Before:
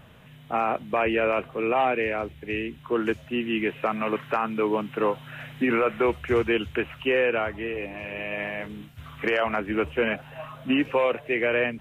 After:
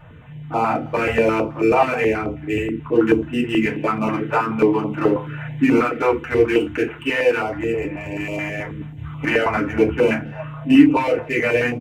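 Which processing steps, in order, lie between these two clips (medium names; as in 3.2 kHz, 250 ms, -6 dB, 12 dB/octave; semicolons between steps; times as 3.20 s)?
local Wiener filter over 9 samples; 5.74–7.52 s: bass shelf 210 Hz -9.5 dB; speakerphone echo 270 ms, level -29 dB; FDN reverb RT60 0.33 s, low-frequency decay 1.6×, high-frequency decay 0.55×, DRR -4.5 dB; step-sequenced notch 9.3 Hz 260–1700 Hz; trim +2 dB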